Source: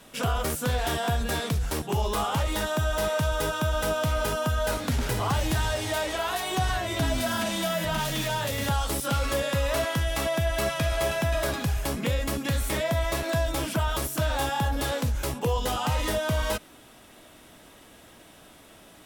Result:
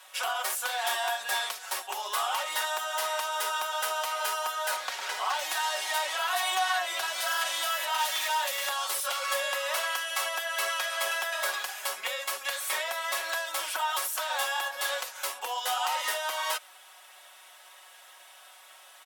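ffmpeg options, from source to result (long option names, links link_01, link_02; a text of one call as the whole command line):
ffmpeg -i in.wav -filter_complex "[0:a]asettb=1/sr,asplit=3[link_01][link_02][link_03];[link_01]atrim=end=4.764[link_04];[link_02]atrim=start=4.76:end=5.39,asetpts=PTS-STARTPTS,afade=type=in:duration=0.004:curve=qsin,afade=type=out:start_time=0.626:duration=0.004:curve=qsin,acrossover=split=7200[link_05][link_06];[link_06]acompressor=threshold=-50dB:ratio=4:attack=1:release=60[link_07];[link_05][link_07]amix=inputs=2:normalize=0[link_08];[link_03]atrim=start=5.386[link_09];[link_04][link_08]acrossfade=duration=0.004:curve1=hsin:curve2=qsin[link_10];[link_10][link_09]acrossfade=duration=0.004:curve1=qsin:curve2=hsin,highpass=frequency=730:width=0.5412,highpass=frequency=730:width=1.3066,aecho=1:1:5.4:0.64" out.wav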